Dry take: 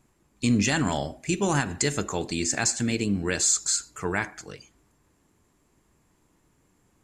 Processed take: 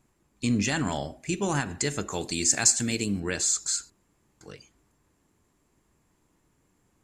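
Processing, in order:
0:02.12–0:03.20: high-shelf EQ 4,700 Hz +11.5 dB
0:03.90–0:04.41: fill with room tone
level −3 dB

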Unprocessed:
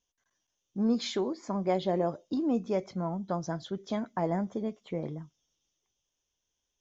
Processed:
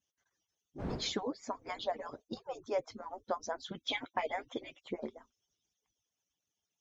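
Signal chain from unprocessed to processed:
harmonic-percussive split with one part muted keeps percussive
0:00.78–0:02.19: wind on the microphone 410 Hz −52 dBFS
0:03.71–0:04.81: flat-topped bell 2,800 Hz +15 dB 1.1 octaves

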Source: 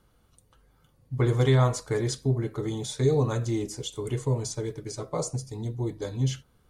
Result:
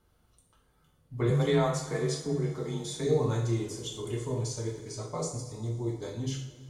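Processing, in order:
coupled-rooms reverb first 0.56 s, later 3.1 s, from −18 dB, DRR −1.5 dB
0:01.30–0:03.07: frequency shifter +26 Hz
level −6.5 dB

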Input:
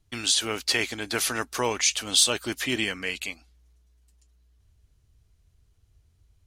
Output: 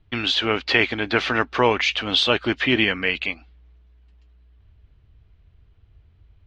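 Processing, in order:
low-pass filter 3,300 Hz 24 dB per octave
level +8.5 dB

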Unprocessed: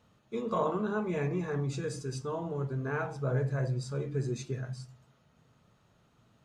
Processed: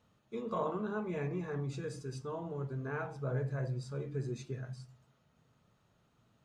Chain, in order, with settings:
dynamic equaliser 7,200 Hz, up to −4 dB, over −59 dBFS, Q 0.93
level −5 dB

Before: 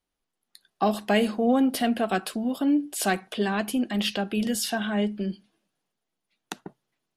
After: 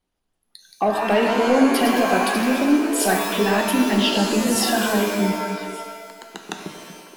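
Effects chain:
spectral envelope exaggerated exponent 1.5
in parallel at −3 dB: downward compressor, threshold −29 dBFS, peak gain reduction 12 dB
on the sum: soft clipping −13 dBFS, distortion −21 dB
delay with pitch and tempo change per echo 206 ms, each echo +1 semitone, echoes 3, each echo −6 dB
on a send: echo through a band-pass that steps 236 ms, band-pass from 180 Hz, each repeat 1.4 octaves, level −7 dB
on the sum: reverb with rising layers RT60 1.3 s, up +7 semitones, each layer −2 dB, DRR 5 dB
level +2 dB

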